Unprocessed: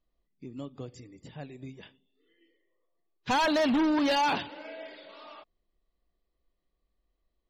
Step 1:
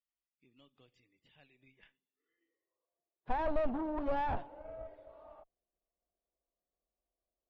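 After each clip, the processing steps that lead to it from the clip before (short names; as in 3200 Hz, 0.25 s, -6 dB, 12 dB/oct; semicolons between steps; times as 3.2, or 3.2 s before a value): band-pass sweep 2900 Hz -> 690 Hz, 1.53–3.03; tube stage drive 31 dB, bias 0.7; RIAA curve playback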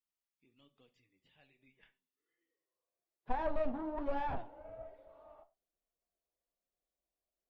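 flange 1.2 Hz, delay 3.6 ms, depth 8.8 ms, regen +48%; on a send at -14 dB: reverb, pre-delay 17 ms; on the sum: gain +1 dB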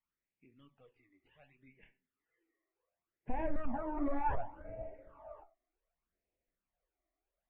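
LPF 2400 Hz 24 dB/oct; limiter -32 dBFS, peak gain reduction 10 dB; phaser stages 12, 0.67 Hz, lowest notch 150–1300 Hz; gain +8 dB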